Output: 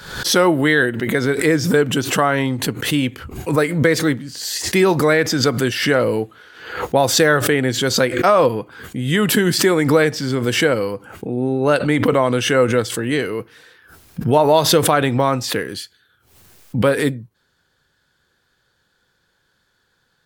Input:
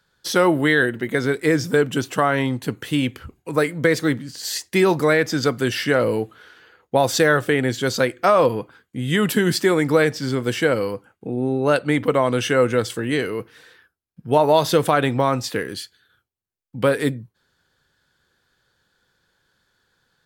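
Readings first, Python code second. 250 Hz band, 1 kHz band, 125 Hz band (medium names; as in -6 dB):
+3.0 dB, +2.5 dB, +3.5 dB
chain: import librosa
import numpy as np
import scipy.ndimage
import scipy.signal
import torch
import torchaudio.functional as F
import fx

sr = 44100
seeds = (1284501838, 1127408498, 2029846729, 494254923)

y = fx.pre_swell(x, sr, db_per_s=76.0)
y = y * 10.0 ** (2.0 / 20.0)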